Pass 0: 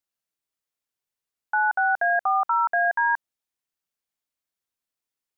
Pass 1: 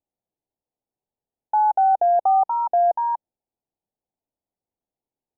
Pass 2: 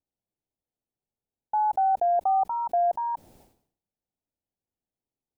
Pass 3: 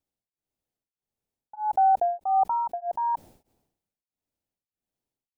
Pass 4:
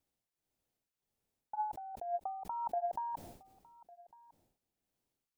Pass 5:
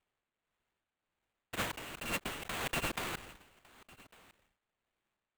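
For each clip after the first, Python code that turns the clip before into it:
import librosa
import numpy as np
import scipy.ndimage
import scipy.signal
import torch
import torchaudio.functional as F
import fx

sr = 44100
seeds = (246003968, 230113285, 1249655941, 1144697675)

y1 = scipy.signal.sosfilt(scipy.signal.ellip(4, 1.0, 70, 850.0, 'lowpass', fs=sr, output='sos'), x)
y1 = F.gain(torch.from_numpy(y1), 8.0).numpy()
y2 = fx.low_shelf(y1, sr, hz=380.0, db=9.5)
y2 = fx.sustainer(y2, sr, db_per_s=100.0)
y2 = F.gain(torch.from_numpy(y2), -7.5).numpy()
y3 = y2 * np.abs(np.cos(np.pi * 1.6 * np.arange(len(y2)) / sr))
y3 = F.gain(torch.from_numpy(y3), 3.5).numpy()
y4 = fx.over_compress(y3, sr, threshold_db=-33.0, ratio=-1.0)
y4 = y4 + 10.0 ** (-22.5 / 20.0) * np.pad(y4, (int(1153 * sr / 1000.0), 0))[:len(y4)]
y4 = F.gain(torch.from_numpy(y4), -6.0).numpy()
y5 = fx.bit_reversed(y4, sr, seeds[0], block=256)
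y5 = fx.sample_hold(y5, sr, seeds[1], rate_hz=5400.0, jitter_pct=20)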